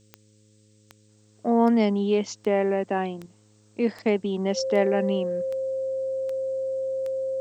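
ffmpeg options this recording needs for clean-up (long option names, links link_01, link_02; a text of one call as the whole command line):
ffmpeg -i in.wav -af "adeclick=threshold=4,bandreject=frequency=106.1:width_type=h:width=4,bandreject=frequency=212.2:width_type=h:width=4,bandreject=frequency=318.3:width_type=h:width=4,bandreject=frequency=424.4:width_type=h:width=4,bandreject=frequency=530.5:width_type=h:width=4,bandreject=frequency=530:width=30,agate=range=-21dB:threshold=-50dB" out.wav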